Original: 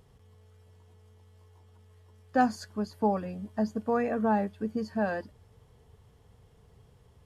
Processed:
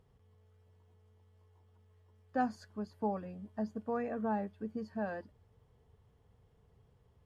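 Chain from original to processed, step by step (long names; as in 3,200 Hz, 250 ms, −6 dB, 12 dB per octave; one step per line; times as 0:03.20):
high-shelf EQ 3,900 Hz −9 dB
level −8 dB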